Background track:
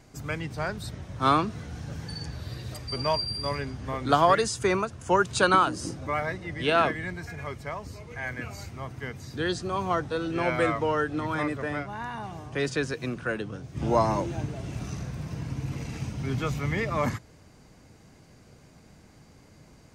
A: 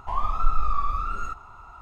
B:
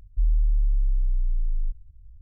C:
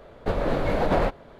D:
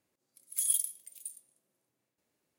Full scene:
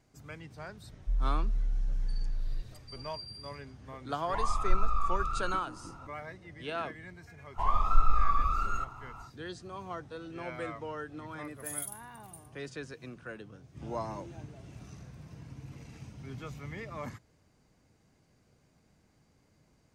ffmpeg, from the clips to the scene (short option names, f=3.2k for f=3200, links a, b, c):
-filter_complex "[1:a]asplit=2[a][b];[0:a]volume=-13.5dB[c];[2:a]atrim=end=2.21,asetpts=PTS-STARTPTS,volume=-8dB,afade=t=in:d=0.004:c=hsin,afade=t=out:st=2.206:d=0.004:c=hsin,adelay=900[d];[a]atrim=end=1.81,asetpts=PTS-STARTPTS,volume=-5dB,afade=t=in:d=0.004:c=hsin,afade=t=out:st=1.806:d=0.004:c=hsin,adelay=4260[e];[b]atrim=end=1.81,asetpts=PTS-STARTPTS,volume=-1.5dB,afade=t=in:d=0.1,afade=t=out:st=1.71:d=0.1,adelay=7510[f];[4:a]atrim=end=2.58,asetpts=PTS-STARTPTS,volume=-9.5dB,afade=t=in:d=0.004:c=hsin,afade=t=out:st=2.576:d=0.004:c=hsin,adelay=11080[g];[c][d][e][f][g]amix=inputs=5:normalize=0"